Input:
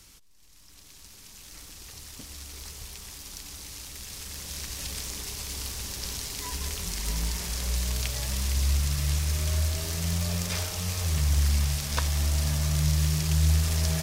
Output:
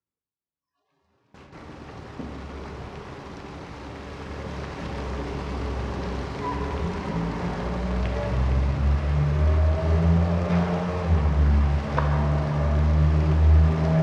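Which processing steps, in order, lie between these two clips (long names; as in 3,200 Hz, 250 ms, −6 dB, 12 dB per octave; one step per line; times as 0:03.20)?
in parallel at +3 dB: downward compressor, threshold −33 dBFS, peak gain reduction 13.5 dB
on the sum: low-pass filter 1,100 Hz 12 dB per octave
noise gate with hold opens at −35 dBFS
mains-hum notches 50/100/150/200/250/300 Hz
on a send at −1.5 dB: convolution reverb RT60 2.1 s, pre-delay 8 ms
on the sum: noise reduction from a noise print of the clip's start 25 dB
high-pass filter 120 Hz 12 dB per octave
level +6.5 dB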